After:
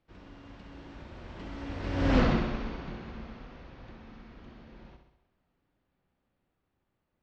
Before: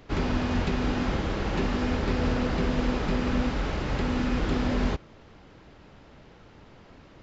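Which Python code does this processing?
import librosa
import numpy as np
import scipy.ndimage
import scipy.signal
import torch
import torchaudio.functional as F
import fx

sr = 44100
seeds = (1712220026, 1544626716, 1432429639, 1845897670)

y = fx.doppler_pass(x, sr, speed_mps=39, closest_m=3.1, pass_at_s=2.19)
y = scipy.signal.sosfilt(scipy.signal.butter(2, 5000.0, 'lowpass', fs=sr, output='sos'), y)
y = fx.notch(y, sr, hz=440.0, q=12.0)
y = fx.echo_feedback(y, sr, ms=65, feedback_pct=58, wet_db=-7.5)
y = F.gain(torch.from_numpy(y), 4.5).numpy()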